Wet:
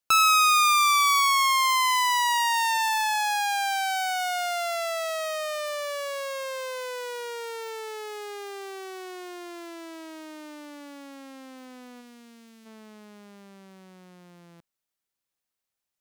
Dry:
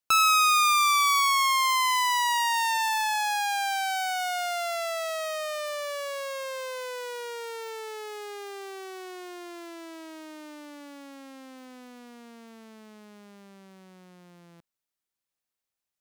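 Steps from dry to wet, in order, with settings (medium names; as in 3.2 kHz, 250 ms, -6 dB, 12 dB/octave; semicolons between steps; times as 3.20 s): 12.00–12.65 s: peaking EQ 750 Hz -5.5 dB -> -14 dB 2.5 oct; trim +1.5 dB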